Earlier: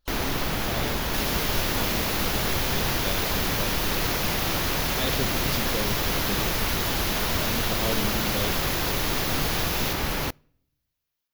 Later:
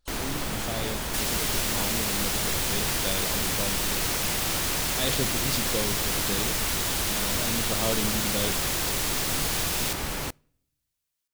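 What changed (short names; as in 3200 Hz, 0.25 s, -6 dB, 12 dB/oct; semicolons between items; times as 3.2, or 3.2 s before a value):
speech: send on; first sound -4.5 dB; master: add bell 8400 Hz +14 dB 0.48 oct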